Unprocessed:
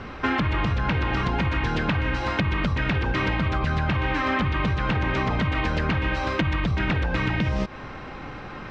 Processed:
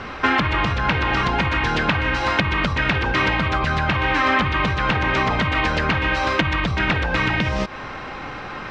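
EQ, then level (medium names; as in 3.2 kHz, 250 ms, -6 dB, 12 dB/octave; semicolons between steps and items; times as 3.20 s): peaking EQ 920 Hz +5.5 dB 2.8 oct; treble shelf 2.1 kHz +8.5 dB; 0.0 dB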